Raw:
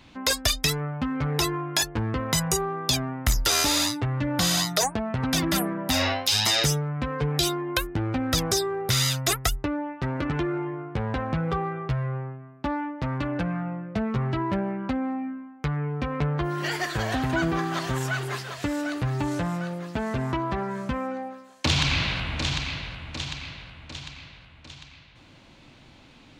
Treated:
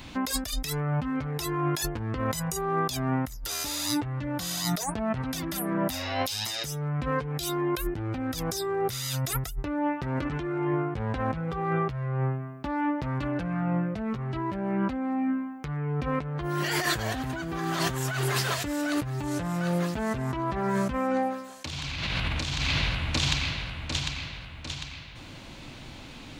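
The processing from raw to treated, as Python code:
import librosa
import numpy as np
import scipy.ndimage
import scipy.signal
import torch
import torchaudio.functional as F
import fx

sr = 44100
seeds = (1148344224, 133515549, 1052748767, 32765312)

y = fx.low_shelf(x, sr, hz=68.0, db=5.0)
y = fx.over_compress(y, sr, threshold_db=-32.0, ratio=-1.0)
y = fx.high_shelf(y, sr, hz=8600.0, db=10.0)
y = F.gain(torch.from_numpy(y), 2.0).numpy()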